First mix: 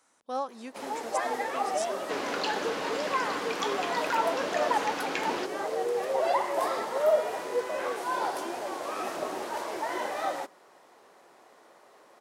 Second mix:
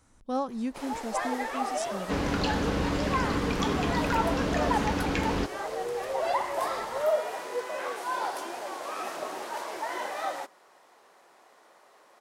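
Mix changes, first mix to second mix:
first sound: add high-pass 670 Hz 12 dB/octave; master: remove high-pass 490 Hz 12 dB/octave

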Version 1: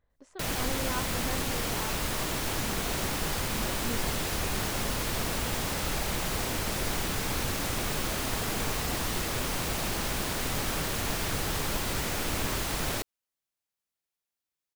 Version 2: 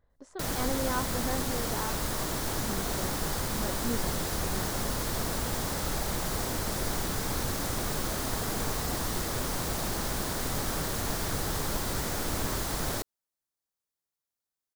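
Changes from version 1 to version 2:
speech +4.5 dB; master: add peaking EQ 2.6 kHz -8 dB 0.79 oct

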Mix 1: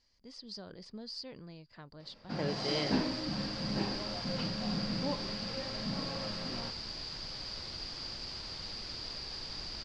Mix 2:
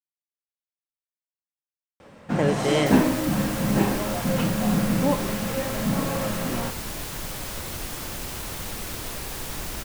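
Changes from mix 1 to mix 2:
speech: muted; second sound: add treble shelf 7 kHz +5.5 dB; master: remove four-pole ladder low-pass 4.9 kHz, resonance 90%

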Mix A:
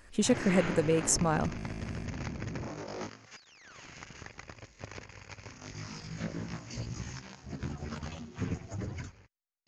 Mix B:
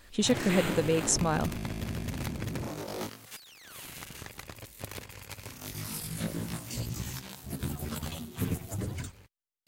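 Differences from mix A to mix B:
background: remove rippled Chebyshev low-pass 6.8 kHz, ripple 3 dB; master: add peaking EQ 3.7 kHz +8 dB 0.6 oct

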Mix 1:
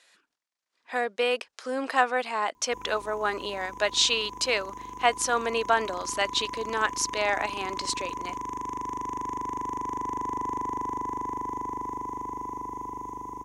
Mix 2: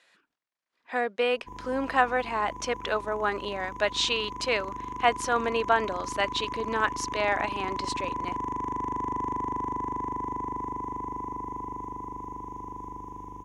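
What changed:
background: entry -1.25 s; master: add tone controls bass +5 dB, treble -9 dB

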